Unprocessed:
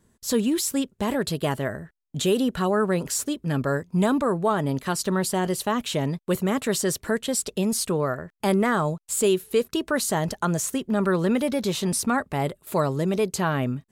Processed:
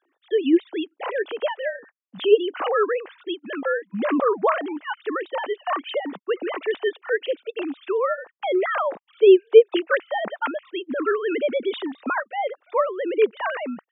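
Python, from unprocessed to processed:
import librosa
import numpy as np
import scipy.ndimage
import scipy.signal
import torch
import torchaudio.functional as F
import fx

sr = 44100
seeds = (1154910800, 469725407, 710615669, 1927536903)

y = fx.sine_speech(x, sr)
y = scipy.signal.sosfilt(scipy.signal.butter(2, 400.0, 'highpass', fs=sr, output='sos'), y)
y = F.gain(torch.from_numpy(y), 4.5).numpy()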